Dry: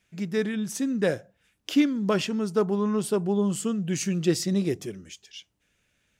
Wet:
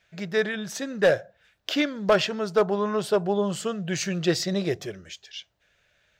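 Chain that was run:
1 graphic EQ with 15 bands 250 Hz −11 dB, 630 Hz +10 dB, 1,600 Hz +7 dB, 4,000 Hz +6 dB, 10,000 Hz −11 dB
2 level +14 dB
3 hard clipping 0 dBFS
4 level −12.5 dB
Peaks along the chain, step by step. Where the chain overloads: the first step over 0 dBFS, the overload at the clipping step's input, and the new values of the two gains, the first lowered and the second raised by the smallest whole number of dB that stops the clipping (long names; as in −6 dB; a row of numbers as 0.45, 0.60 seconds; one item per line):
−9.0, +5.0, 0.0, −12.5 dBFS
step 2, 5.0 dB
step 2 +9 dB, step 4 −7.5 dB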